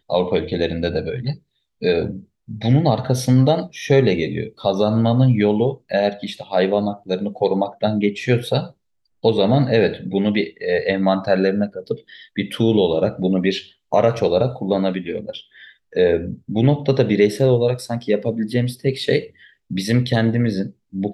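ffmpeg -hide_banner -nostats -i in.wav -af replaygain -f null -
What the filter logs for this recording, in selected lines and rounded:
track_gain = -0.2 dB
track_peak = 0.557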